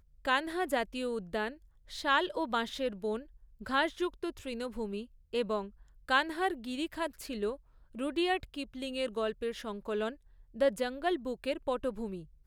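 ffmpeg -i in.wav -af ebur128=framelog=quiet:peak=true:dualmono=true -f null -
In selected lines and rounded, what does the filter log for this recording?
Integrated loudness:
  I:         -31.0 LUFS
  Threshold: -41.4 LUFS
Loudness range:
  LRA:         2.1 LU
  Threshold: -51.6 LUFS
  LRA low:   -32.7 LUFS
  LRA high:  -30.6 LUFS
True peak:
  Peak:      -13.4 dBFS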